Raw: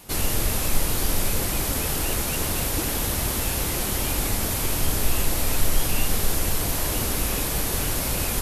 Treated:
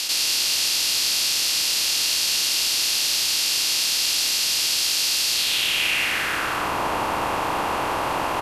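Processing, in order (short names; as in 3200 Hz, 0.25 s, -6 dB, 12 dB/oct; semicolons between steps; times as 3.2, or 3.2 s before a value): per-bin compression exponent 0.2; frequency-shifting echo 0.103 s, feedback 50%, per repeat +57 Hz, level -10.5 dB; band-pass sweep 4700 Hz -> 980 Hz, 5.3–6.78; gain +8.5 dB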